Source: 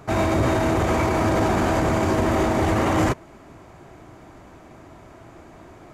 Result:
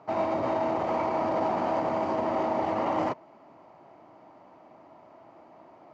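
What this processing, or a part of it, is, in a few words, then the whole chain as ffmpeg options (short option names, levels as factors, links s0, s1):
kitchen radio: -af "highpass=230,equalizer=f=390:t=q:w=4:g=-5,equalizer=f=610:t=q:w=4:g=5,equalizer=f=890:t=q:w=4:g=7,equalizer=f=1600:t=q:w=4:g=-8,equalizer=f=2400:t=q:w=4:g=-4,equalizer=f=3600:t=q:w=4:g=-9,lowpass=f=4500:w=0.5412,lowpass=f=4500:w=1.3066,volume=0.422"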